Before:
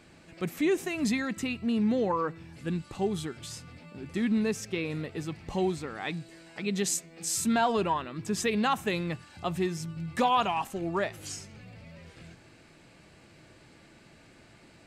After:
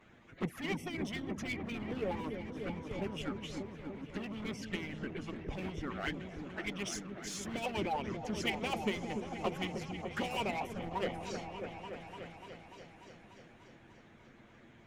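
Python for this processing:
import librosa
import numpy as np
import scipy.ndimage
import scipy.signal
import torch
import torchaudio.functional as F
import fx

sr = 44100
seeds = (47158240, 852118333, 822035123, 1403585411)

p1 = fx.cheby_harmonics(x, sr, harmonics=(5,), levels_db=(-34,), full_scale_db=-14.5)
p2 = fx.band_shelf(p1, sr, hz=7600.0, db=-10.5, octaves=1.7)
p3 = fx.env_flanger(p2, sr, rest_ms=10.9, full_db=-27.5)
p4 = fx.formant_shift(p3, sr, semitones=-3)
p5 = 10.0 ** (-34.5 / 20.0) * (np.abs((p4 / 10.0 ** (-34.5 / 20.0) + 3.0) % 4.0 - 2.0) - 1.0)
p6 = p4 + F.gain(torch.from_numpy(p5), -7.0).numpy()
p7 = fx.hpss(p6, sr, part='harmonic', gain_db=-15)
y = fx.echo_opening(p7, sr, ms=294, hz=400, octaves=1, feedback_pct=70, wet_db=-3)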